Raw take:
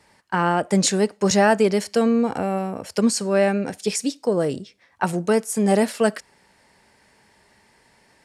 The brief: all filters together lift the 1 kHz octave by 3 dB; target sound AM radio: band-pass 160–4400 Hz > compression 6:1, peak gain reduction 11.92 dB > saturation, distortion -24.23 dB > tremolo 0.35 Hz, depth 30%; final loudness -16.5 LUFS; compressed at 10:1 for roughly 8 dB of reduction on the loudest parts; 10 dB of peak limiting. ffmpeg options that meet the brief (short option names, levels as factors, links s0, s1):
-af "equalizer=f=1000:t=o:g=4,acompressor=threshold=0.1:ratio=10,alimiter=limit=0.126:level=0:latency=1,highpass=160,lowpass=4400,acompressor=threshold=0.0178:ratio=6,asoftclip=threshold=0.0531,tremolo=f=0.35:d=0.3,volume=17.8"